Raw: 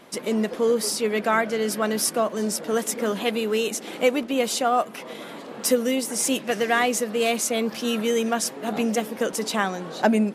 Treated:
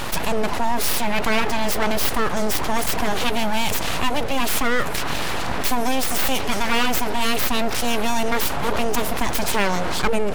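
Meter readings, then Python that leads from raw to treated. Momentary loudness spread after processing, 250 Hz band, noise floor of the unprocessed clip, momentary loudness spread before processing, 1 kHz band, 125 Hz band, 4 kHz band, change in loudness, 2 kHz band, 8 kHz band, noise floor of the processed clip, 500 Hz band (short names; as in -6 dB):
3 LU, -1.0 dB, -39 dBFS, 5 LU, +4.0 dB, +7.0 dB, +5.0 dB, +1.5 dB, +4.5 dB, 0.0 dB, -23 dBFS, -2.0 dB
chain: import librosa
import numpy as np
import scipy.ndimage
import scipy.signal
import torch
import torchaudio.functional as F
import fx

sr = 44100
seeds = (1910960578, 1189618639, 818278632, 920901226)

y = np.abs(x)
y = fx.env_flatten(y, sr, amount_pct=70)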